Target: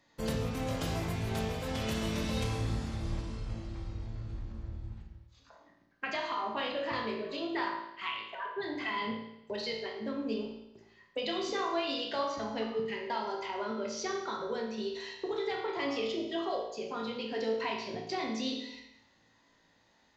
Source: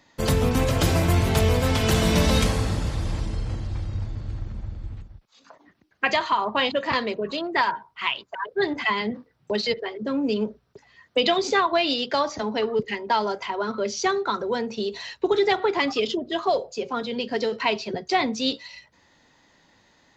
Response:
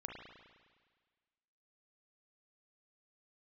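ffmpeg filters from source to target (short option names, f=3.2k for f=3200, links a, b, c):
-filter_complex "[0:a]acompressor=threshold=-24dB:ratio=2.5[a];[1:a]atrim=start_sample=2205,asetrate=83790,aresample=44100[b];[a][b]afir=irnorm=-1:irlink=0"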